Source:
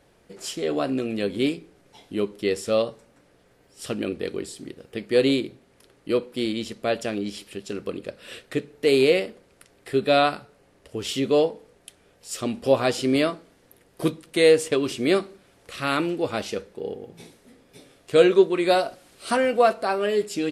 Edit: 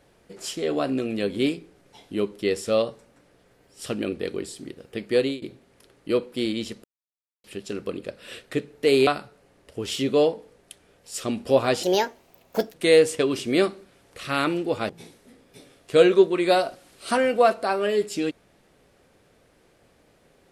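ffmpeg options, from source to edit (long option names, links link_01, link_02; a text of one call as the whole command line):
ffmpeg -i in.wav -filter_complex "[0:a]asplit=8[link_01][link_02][link_03][link_04][link_05][link_06][link_07][link_08];[link_01]atrim=end=5.42,asetpts=PTS-STARTPTS,afade=type=out:start_time=5.12:duration=0.3:silence=0.0707946[link_09];[link_02]atrim=start=5.42:end=6.84,asetpts=PTS-STARTPTS,afade=type=in:duration=0.004:curve=hsin:silence=0.0707946,afade=type=out:start_time=1.416:duration=0.004:curve=hsin[link_10];[link_03]atrim=start=6.84:end=7.44,asetpts=PTS-STARTPTS,volume=0[link_11];[link_04]atrim=start=7.44:end=9.072,asetpts=PTS-STARTPTS,afade=type=in:duration=0.004:curve=hsin[link_12];[link_05]atrim=start=10.238:end=13.004[link_13];[link_06]atrim=start=13:end=14.27,asetpts=PTS-STARTPTS,asetrate=61299,aresample=44100[link_14];[link_07]atrim=start=14.266:end=16.422[link_15];[link_08]atrim=start=17.088[link_16];[link_09][link_10][link_11][link_12]concat=n=4:v=0:a=1[link_17];[link_17][link_13]acrossfade=duration=0.004:curve1=hsin:curve2=hsin[link_18];[link_18][link_14]acrossfade=duration=0.004:curve1=hsin:curve2=hsin[link_19];[link_19][link_15]acrossfade=duration=0.004:curve1=hsin:curve2=hsin[link_20];[link_20][link_16]acrossfade=duration=0.004:curve1=hsin:curve2=hsin" out.wav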